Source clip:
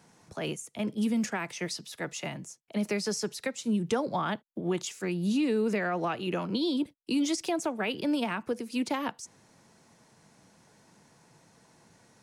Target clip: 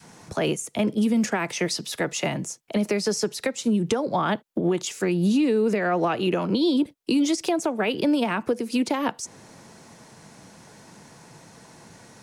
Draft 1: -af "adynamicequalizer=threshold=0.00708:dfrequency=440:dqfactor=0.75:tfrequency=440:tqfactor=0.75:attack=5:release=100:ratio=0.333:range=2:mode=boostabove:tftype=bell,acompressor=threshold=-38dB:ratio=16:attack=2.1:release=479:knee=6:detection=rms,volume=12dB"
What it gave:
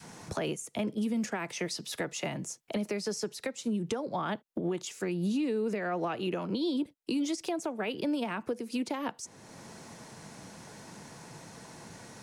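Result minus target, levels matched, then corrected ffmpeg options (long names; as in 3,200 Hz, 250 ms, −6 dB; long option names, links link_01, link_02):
downward compressor: peak gain reduction +9.5 dB
-af "adynamicequalizer=threshold=0.00708:dfrequency=440:dqfactor=0.75:tfrequency=440:tqfactor=0.75:attack=5:release=100:ratio=0.333:range=2:mode=boostabove:tftype=bell,acompressor=threshold=-28dB:ratio=16:attack=2.1:release=479:knee=6:detection=rms,volume=12dB"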